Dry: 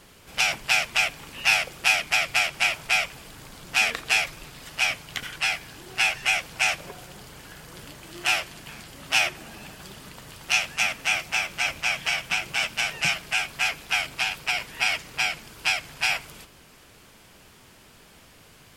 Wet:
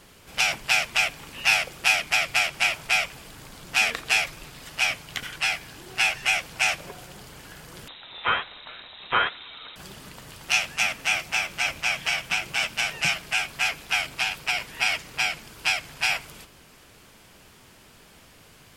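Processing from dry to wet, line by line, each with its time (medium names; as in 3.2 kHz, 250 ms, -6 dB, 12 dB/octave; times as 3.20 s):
7.88–9.76 s: frequency inversion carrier 3.9 kHz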